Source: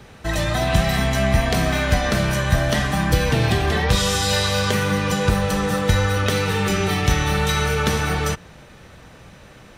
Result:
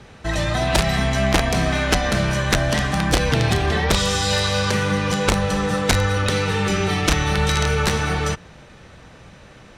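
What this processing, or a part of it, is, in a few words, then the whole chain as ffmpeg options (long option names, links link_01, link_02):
overflowing digital effects unit: -filter_complex "[0:a]asettb=1/sr,asplit=3[link_01][link_02][link_03];[link_01]atrim=end=7.374[link_04];[link_02]atrim=start=7.37:end=7.9,asetpts=PTS-STARTPTS,afade=type=in:duration=0.004:curve=qsin,afade=type=out:start_time=0.526:duration=0.004:curve=qsin,lowshelf=frequency=81:gain=5[link_05];[link_03]atrim=start=7.896[link_06];[link_04][link_05]acrossfade=duration=0.004:curve1=hsin:curve2=qsin[link_07];[link_07][link_06]acrossfade=duration=0.004:curve1=qsin:curve2=hsin,aeval=exprs='(mod(2.82*val(0)+1,2)-1)/2.82':channel_layout=same,lowpass=8600"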